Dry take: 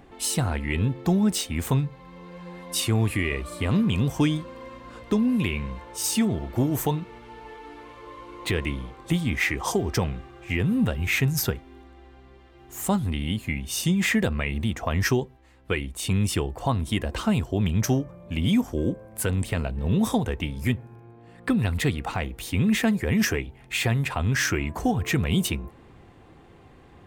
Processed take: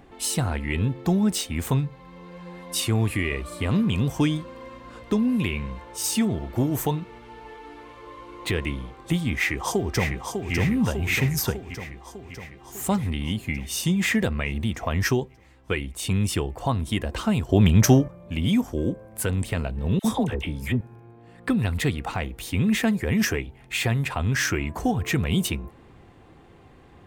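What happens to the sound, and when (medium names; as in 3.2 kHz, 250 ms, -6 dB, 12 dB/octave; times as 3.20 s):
9.35–10.54 s: echo throw 600 ms, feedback 65%, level -5.5 dB
17.49–18.08 s: gain +7 dB
19.99–20.81 s: phase dispersion lows, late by 55 ms, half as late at 960 Hz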